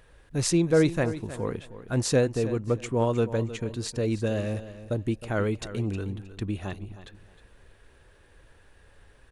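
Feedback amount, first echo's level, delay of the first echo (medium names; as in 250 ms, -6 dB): 23%, -14.0 dB, 313 ms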